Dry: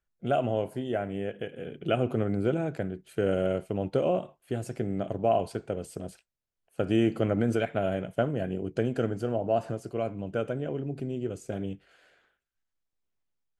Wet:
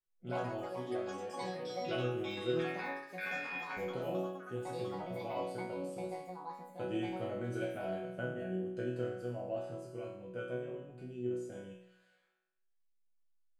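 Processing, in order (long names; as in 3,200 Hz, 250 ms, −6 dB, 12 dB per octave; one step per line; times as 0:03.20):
0:02.59–0:03.77: ring modulation 2,000 Hz
resonators tuned to a chord B2 sus4, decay 0.82 s
delay with pitch and tempo change per echo 117 ms, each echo +7 semitones, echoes 3, each echo −6 dB
level +8.5 dB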